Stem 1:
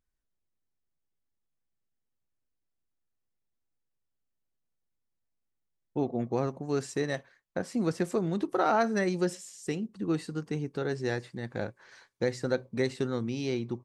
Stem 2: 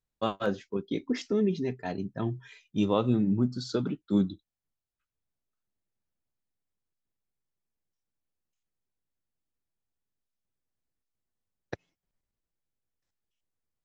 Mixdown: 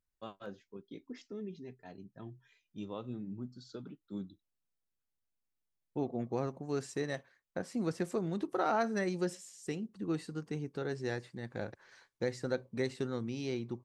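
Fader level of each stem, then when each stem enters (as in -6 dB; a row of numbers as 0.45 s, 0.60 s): -5.5 dB, -16.5 dB; 0.00 s, 0.00 s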